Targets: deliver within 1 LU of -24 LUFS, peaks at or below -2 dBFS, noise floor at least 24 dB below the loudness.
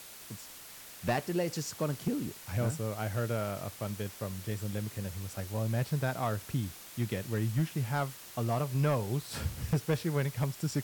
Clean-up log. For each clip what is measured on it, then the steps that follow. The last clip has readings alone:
clipped samples 0.5%; clipping level -22.5 dBFS; noise floor -49 dBFS; noise floor target -58 dBFS; loudness -34.0 LUFS; peak level -22.5 dBFS; loudness target -24.0 LUFS
-> clip repair -22.5 dBFS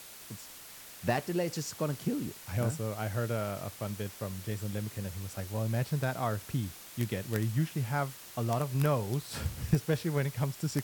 clipped samples 0.0%; noise floor -49 dBFS; noise floor target -58 dBFS
-> noise reduction 9 dB, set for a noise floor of -49 dBFS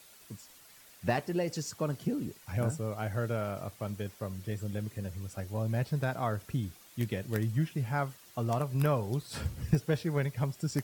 noise floor -57 dBFS; noise floor target -58 dBFS
-> noise reduction 6 dB, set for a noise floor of -57 dBFS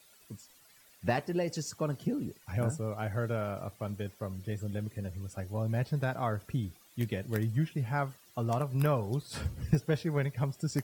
noise floor -61 dBFS; loudness -34.0 LUFS; peak level -14.0 dBFS; loudness target -24.0 LUFS
-> trim +10 dB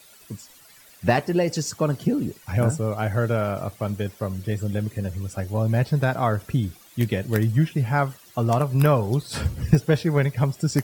loudness -24.0 LUFS; peak level -4.0 dBFS; noise floor -51 dBFS

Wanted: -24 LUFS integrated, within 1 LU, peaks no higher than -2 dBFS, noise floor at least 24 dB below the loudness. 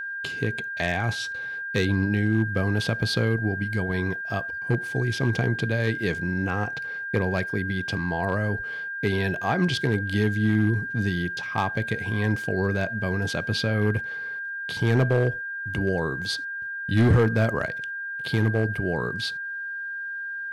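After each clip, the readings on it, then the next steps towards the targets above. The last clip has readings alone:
clipped samples 0.4%; clipping level -13.5 dBFS; steady tone 1.6 kHz; tone level -30 dBFS; loudness -25.5 LUFS; peak level -13.5 dBFS; loudness target -24.0 LUFS
-> clip repair -13.5 dBFS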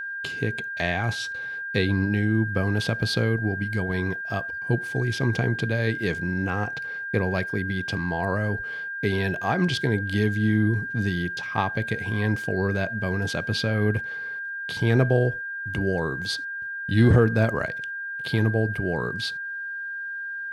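clipped samples 0.0%; steady tone 1.6 kHz; tone level -30 dBFS
-> band-stop 1.6 kHz, Q 30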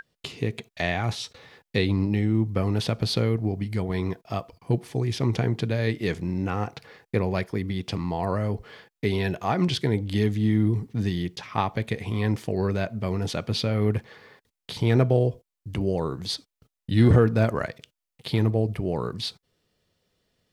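steady tone not found; loudness -26.0 LUFS; peak level -6.0 dBFS; loudness target -24.0 LUFS
-> trim +2 dB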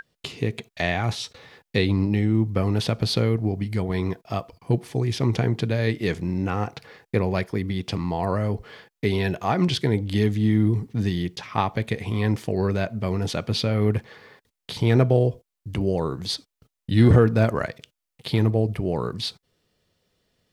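loudness -24.0 LUFS; peak level -4.0 dBFS; noise floor -83 dBFS

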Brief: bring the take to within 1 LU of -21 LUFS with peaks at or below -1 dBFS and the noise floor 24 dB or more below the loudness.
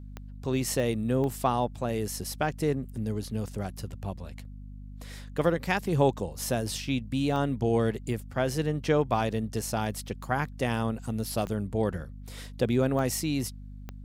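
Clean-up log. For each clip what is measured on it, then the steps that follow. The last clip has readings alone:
clicks found 7; hum 50 Hz; highest harmonic 250 Hz; hum level -40 dBFS; loudness -29.5 LUFS; peak level -10.5 dBFS; loudness target -21.0 LUFS
-> de-click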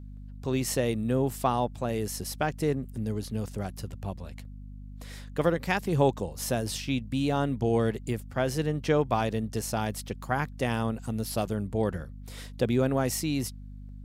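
clicks found 0; hum 50 Hz; highest harmonic 250 Hz; hum level -40 dBFS
-> de-hum 50 Hz, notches 5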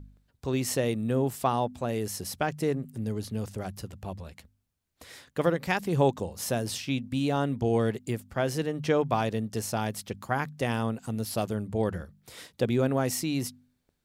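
hum not found; loudness -29.5 LUFS; peak level -11.0 dBFS; loudness target -21.0 LUFS
-> trim +8.5 dB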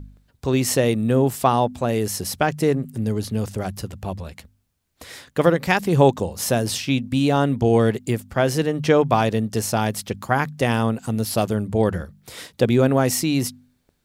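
loudness -21.0 LUFS; peak level -2.5 dBFS; noise floor -68 dBFS

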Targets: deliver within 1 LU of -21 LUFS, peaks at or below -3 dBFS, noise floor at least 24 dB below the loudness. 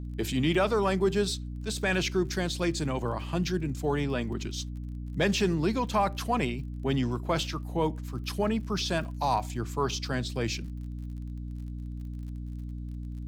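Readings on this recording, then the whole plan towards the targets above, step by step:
tick rate 35 per s; hum 60 Hz; highest harmonic 300 Hz; hum level -34 dBFS; loudness -30.5 LUFS; peak level -13.5 dBFS; loudness target -21.0 LUFS
-> de-click; de-hum 60 Hz, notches 5; trim +9.5 dB

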